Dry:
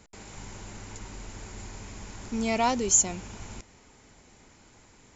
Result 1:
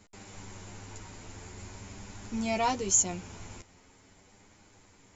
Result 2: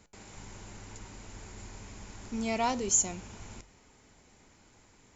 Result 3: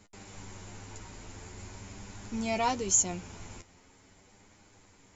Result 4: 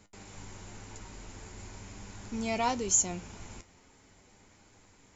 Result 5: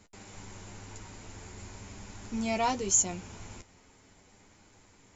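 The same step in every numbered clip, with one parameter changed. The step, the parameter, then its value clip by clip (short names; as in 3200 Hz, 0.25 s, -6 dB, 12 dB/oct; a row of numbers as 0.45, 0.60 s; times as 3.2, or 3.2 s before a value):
flange, regen: -4, -85, +23, +61, -26%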